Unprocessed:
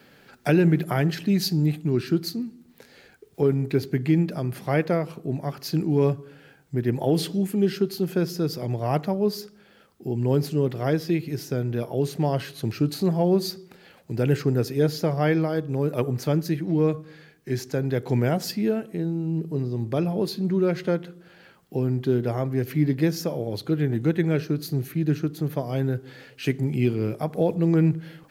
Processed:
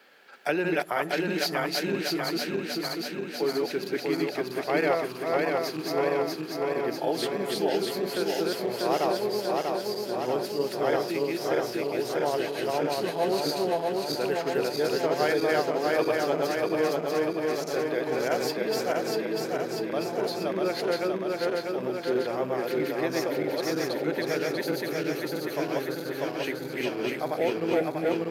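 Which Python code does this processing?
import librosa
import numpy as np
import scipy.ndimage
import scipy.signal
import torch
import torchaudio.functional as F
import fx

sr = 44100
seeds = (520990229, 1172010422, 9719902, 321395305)

y = fx.reverse_delay_fb(x, sr, ms=321, feedback_pct=81, wet_db=-0.5)
y = scipy.signal.sosfilt(scipy.signal.butter(2, 540.0, 'highpass', fs=sr, output='sos'), y)
y = fx.high_shelf(y, sr, hz=5200.0, db=-6.5)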